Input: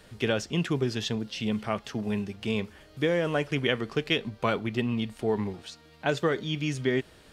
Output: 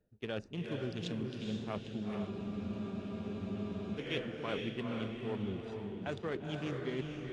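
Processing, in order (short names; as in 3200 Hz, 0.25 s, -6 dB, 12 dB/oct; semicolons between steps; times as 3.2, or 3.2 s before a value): Wiener smoothing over 41 samples; reverse; compressor 6:1, threshold -40 dBFS, peak gain reduction 18 dB; reverse; low shelf 150 Hz -3.5 dB; upward compressor, threshold -57 dBFS; on a send: diffused feedback echo 0.463 s, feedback 43%, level -3 dB; on the sum: expander -49 dBFS; spectral freeze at 2.33, 1.66 s; gain +4 dB; AAC 48 kbps 24000 Hz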